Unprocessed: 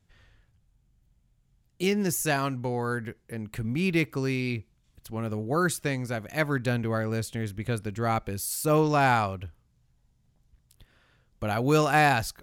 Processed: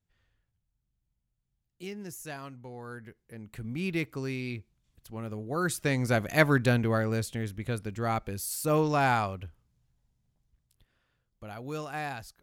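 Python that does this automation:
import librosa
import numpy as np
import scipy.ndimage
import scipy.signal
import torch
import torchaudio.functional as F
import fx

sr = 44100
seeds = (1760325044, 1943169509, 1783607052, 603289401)

y = fx.gain(x, sr, db=fx.line((2.67, -14.5), (3.79, -6.0), (5.54, -6.0), (6.15, 6.0), (7.6, -3.0), (9.44, -3.0), (11.6, -14.5)))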